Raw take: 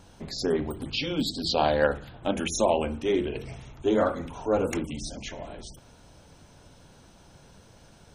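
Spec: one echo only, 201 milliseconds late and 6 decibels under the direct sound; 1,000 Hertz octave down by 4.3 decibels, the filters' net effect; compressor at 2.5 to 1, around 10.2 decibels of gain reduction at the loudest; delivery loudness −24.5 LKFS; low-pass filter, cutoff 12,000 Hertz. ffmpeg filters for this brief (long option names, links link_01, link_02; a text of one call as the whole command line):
ffmpeg -i in.wav -af "lowpass=12000,equalizer=frequency=1000:width_type=o:gain=-6.5,acompressor=threshold=-36dB:ratio=2.5,aecho=1:1:201:0.501,volume=12dB" out.wav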